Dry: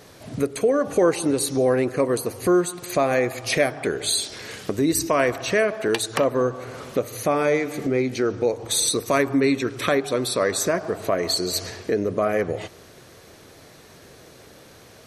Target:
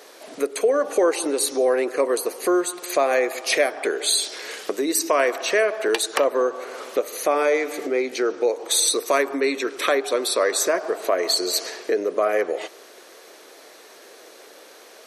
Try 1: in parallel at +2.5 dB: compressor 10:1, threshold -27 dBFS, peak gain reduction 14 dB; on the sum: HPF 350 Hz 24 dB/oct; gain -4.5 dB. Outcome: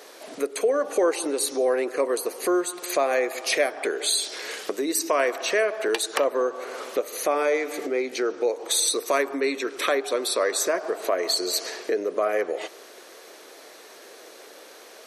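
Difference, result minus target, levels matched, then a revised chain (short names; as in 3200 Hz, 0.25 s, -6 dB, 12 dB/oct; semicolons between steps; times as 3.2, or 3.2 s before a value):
compressor: peak gain reduction +8 dB
in parallel at +2.5 dB: compressor 10:1, threshold -18 dBFS, peak gain reduction 5.5 dB; on the sum: HPF 350 Hz 24 dB/oct; gain -4.5 dB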